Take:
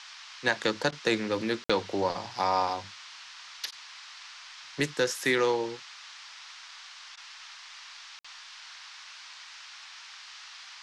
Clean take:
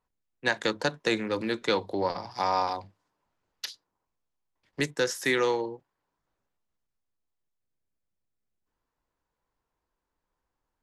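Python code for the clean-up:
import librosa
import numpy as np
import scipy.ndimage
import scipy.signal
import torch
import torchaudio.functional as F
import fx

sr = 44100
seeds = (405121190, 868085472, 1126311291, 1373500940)

y = fx.fix_interpolate(x, sr, at_s=(1.64, 8.19), length_ms=55.0)
y = fx.fix_interpolate(y, sr, at_s=(0.91, 3.71, 7.16), length_ms=11.0)
y = fx.noise_reduce(y, sr, print_start_s=6.9, print_end_s=7.4, reduce_db=30.0)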